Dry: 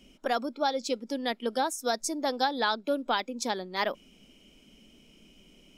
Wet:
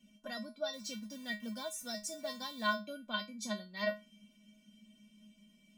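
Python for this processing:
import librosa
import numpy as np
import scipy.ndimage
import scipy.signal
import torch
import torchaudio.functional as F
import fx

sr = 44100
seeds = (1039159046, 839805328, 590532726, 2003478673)

y = fx.delta_hold(x, sr, step_db=-43.5, at=(0.73, 2.73))
y = fx.peak_eq(y, sr, hz=740.0, db=-4.5, octaves=2.1)
y = fx.comb_fb(y, sr, f0_hz=210.0, decay_s=0.23, harmonics='odd', damping=0.0, mix_pct=100)
y = y * 10.0 ** (8.0 / 20.0)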